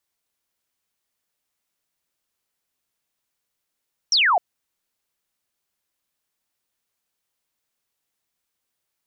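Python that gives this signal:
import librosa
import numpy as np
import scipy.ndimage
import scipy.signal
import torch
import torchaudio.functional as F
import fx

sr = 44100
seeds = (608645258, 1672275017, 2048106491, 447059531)

y = fx.laser_zap(sr, level_db=-14.5, start_hz=5900.0, end_hz=650.0, length_s=0.26, wave='sine')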